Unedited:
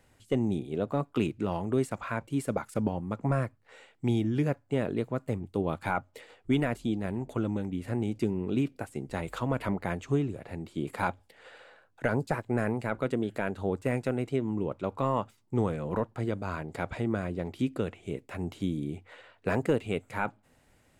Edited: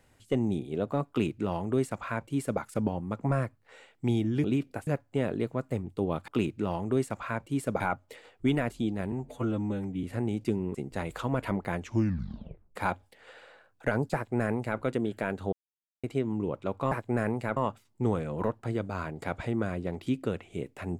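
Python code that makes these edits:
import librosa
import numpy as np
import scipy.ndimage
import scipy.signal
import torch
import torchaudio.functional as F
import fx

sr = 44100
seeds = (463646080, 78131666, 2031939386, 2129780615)

y = fx.edit(x, sr, fx.duplicate(start_s=1.09, length_s=1.52, to_s=5.85),
    fx.stretch_span(start_s=7.17, length_s=0.61, factor=1.5),
    fx.move(start_s=8.49, length_s=0.43, to_s=4.44),
    fx.tape_stop(start_s=9.97, length_s=0.96),
    fx.duplicate(start_s=12.32, length_s=0.65, to_s=15.09),
    fx.silence(start_s=13.7, length_s=0.51), tone=tone)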